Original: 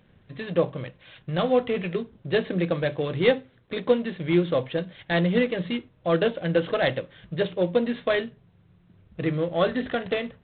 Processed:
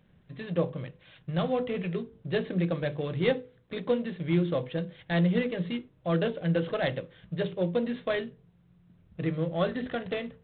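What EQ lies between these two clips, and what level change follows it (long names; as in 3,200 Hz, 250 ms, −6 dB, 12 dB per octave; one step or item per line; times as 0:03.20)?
parametric band 160 Hz +6 dB 0.29 octaves
low-shelf EQ 370 Hz +3.5 dB
mains-hum notches 50/100/150/200/250/300/350/400/450/500 Hz
−6.5 dB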